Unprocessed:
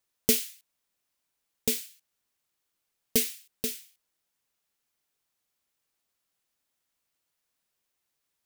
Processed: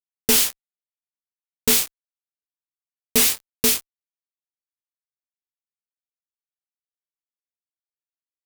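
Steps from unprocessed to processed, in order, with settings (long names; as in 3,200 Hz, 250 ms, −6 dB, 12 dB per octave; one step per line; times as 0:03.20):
harmonic generator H 6 −16 dB, 7 −44 dB, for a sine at −7 dBFS
fuzz pedal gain 45 dB, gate −42 dBFS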